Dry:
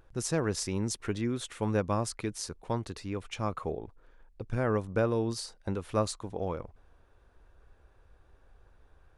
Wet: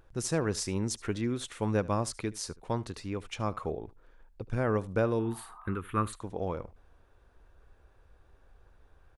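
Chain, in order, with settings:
0:05.25–0:05.73: healed spectral selection 640–1,300 Hz both
0:05.19–0:06.13: drawn EQ curve 390 Hz 0 dB, 610 Hz −16 dB, 1,300 Hz +8 dB, 3,400 Hz −2 dB, 5,200 Hz −25 dB, 12,000 Hz +7 dB
single-tap delay 74 ms −21 dB

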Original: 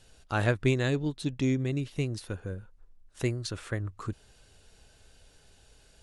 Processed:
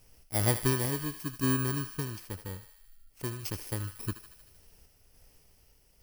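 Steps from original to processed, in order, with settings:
samples in bit-reversed order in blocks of 32 samples
sample-and-hold tremolo
feedback echo with a high-pass in the loop 77 ms, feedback 72%, high-pass 980 Hz, level −9.5 dB
level that may rise only so fast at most 560 dB per second

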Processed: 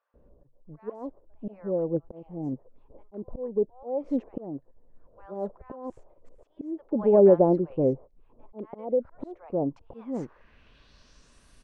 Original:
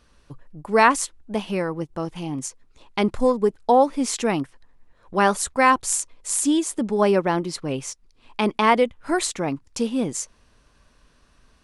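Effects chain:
brickwall limiter −11.5 dBFS, peak gain reduction 9 dB
volume swells 604 ms
low-pass filter sweep 560 Hz → 10,000 Hz, 0:09.66–0:11.45
tape wow and flutter 26 cents
multiband delay without the direct sound highs, lows 140 ms, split 1,100 Hz

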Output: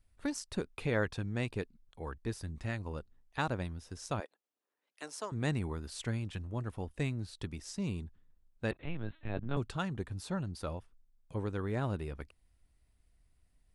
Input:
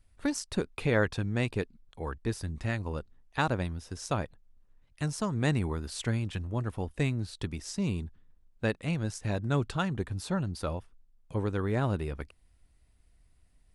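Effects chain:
0:04.20–0:05.32: high-pass filter 340 Hz 24 dB per octave
0:08.71–0:09.57: linear-prediction vocoder at 8 kHz pitch kept
level −5.5 dB

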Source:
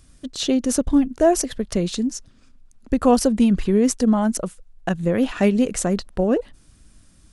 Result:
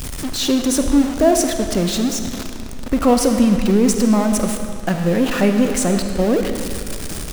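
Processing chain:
converter with a step at zero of −22 dBFS
convolution reverb RT60 2.4 s, pre-delay 10 ms, DRR 5.5 dB

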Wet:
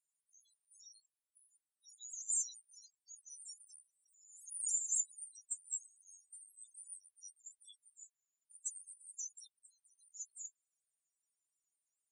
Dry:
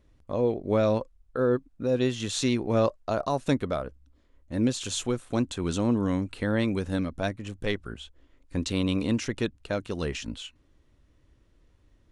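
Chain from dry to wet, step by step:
0:09.57–0:10.20: downward compressor, threshold −41 dBFS, peak gain reduction 16 dB
inverse Chebyshev high-pass filter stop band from 1,300 Hz, stop band 80 dB
spectral peaks only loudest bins 4
0:03.55–0:04.88: background raised ahead of every attack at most 63 dB per second
level +16 dB

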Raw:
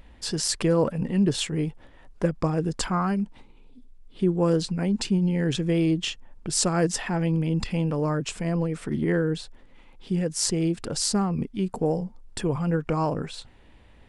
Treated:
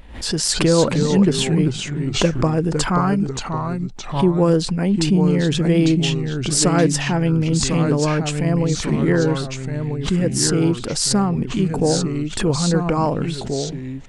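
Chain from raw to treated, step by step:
delay with pitch and tempo change per echo 234 ms, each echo −2 semitones, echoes 2, each echo −6 dB
background raised ahead of every attack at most 100 dB per second
level +6 dB

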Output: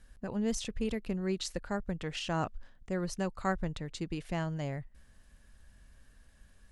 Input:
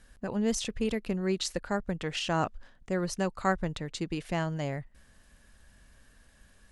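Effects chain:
low-shelf EQ 130 Hz +7 dB
level −5 dB

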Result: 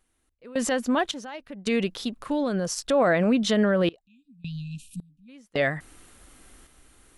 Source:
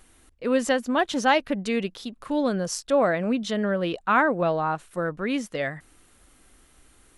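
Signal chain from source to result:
brickwall limiter −19 dBFS, peak gain reduction 11 dB
time-frequency box erased 0:04.02–0:05.29, 300–2,400 Hz
sample-and-hold tremolo 1.8 Hz, depth 95%
level +6 dB

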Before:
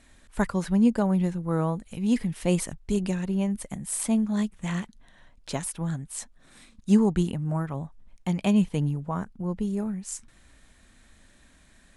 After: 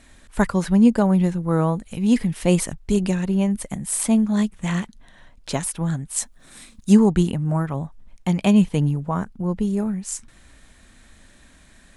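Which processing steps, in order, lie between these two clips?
0:06.16–0:06.93: high-shelf EQ 6,800 Hz +10 dB
level +6 dB

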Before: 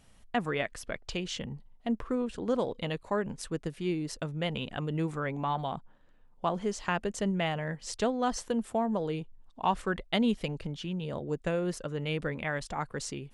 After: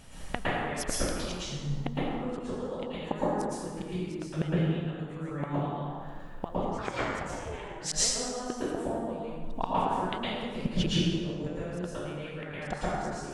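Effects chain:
gate with flip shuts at −27 dBFS, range −25 dB
dense smooth reverb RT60 1.7 s, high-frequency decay 0.6×, pre-delay 100 ms, DRR −9 dB
0:06.77–0:07.92: ring modulation 690 Hz → 150 Hz
level +9 dB

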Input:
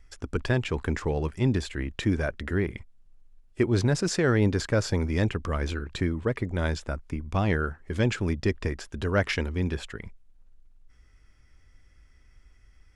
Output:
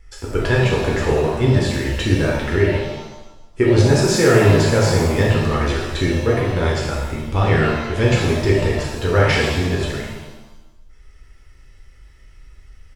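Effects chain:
comb filter 2.3 ms, depth 40%
reverb with rising layers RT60 1 s, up +7 semitones, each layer −8 dB, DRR −4 dB
level +4 dB

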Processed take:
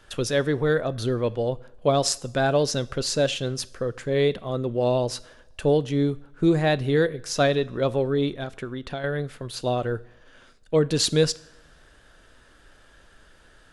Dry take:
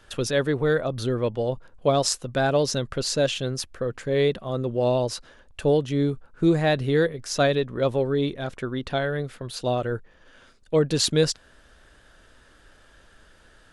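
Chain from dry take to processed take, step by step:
0:08.43–0:09.04: downward compressor 6 to 1, threshold −29 dBFS, peak gain reduction 9 dB
coupled-rooms reverb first 0.62 s, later 1.9 s, from −18 dB, DRR 17.5 dB

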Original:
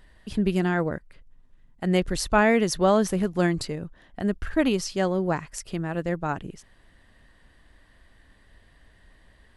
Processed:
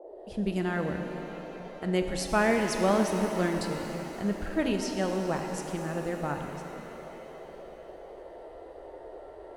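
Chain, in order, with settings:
fade in at the beginning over 0.52 s
noise in a band 340–700 Hz −41 dBFS
reverb with rising layers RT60 3.5 s, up +7 semitones, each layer −8 dB, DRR 4 dB
level −6 dB

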